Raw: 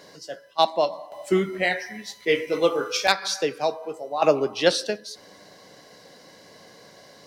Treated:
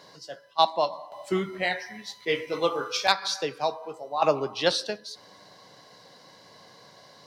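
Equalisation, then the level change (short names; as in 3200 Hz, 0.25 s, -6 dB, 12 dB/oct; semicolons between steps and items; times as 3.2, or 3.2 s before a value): graphic EQ 125/1000/4000 Hz +7/+9/+7 dB; -7.5 dB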